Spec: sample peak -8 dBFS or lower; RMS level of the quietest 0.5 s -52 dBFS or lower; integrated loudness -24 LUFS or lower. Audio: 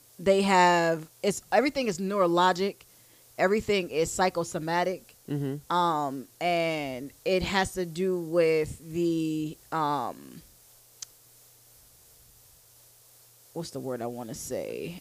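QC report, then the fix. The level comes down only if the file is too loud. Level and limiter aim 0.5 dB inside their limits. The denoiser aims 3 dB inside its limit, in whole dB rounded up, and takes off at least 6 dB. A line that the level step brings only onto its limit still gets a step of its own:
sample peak -9.5 dBFS: OK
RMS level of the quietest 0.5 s -57 dBFS: OK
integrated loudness -27.5 LUFS: OK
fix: none

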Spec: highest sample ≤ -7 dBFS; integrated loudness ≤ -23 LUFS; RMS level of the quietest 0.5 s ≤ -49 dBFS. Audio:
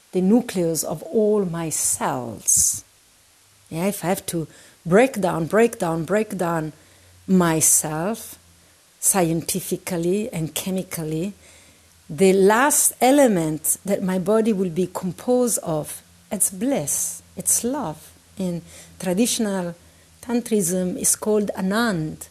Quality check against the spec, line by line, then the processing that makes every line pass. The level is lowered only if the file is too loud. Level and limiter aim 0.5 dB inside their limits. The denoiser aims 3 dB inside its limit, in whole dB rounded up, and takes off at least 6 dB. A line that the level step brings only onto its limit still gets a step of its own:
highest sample -6.0 dBFS: fail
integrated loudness -20.5 LUFS: fail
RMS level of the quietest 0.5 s -55 dBFS: OK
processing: gain -3 dB

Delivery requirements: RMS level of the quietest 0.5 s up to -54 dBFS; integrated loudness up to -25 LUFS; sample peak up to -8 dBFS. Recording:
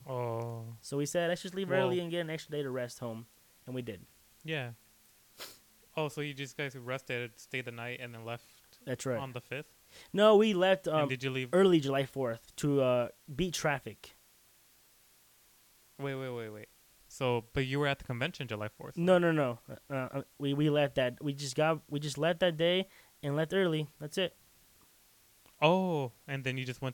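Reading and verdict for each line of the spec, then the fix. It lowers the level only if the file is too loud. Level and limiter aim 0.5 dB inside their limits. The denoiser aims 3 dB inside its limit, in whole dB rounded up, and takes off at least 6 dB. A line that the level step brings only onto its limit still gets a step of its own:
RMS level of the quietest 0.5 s -65 dBFS: OK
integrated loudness -32.5 LUFS: OK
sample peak -10.5 dBFS: OK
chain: none

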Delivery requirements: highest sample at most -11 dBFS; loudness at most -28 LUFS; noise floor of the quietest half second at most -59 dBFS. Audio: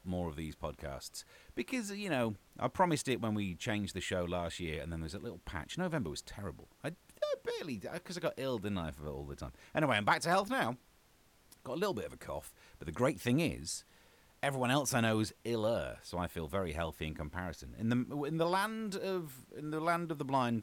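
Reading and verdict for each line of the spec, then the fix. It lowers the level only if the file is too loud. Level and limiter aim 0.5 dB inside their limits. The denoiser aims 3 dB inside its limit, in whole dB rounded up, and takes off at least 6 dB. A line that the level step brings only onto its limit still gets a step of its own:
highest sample -15.5 dBFS: OK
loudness -36.5 LUFS: OK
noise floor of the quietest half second -66 dBFS: OK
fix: none

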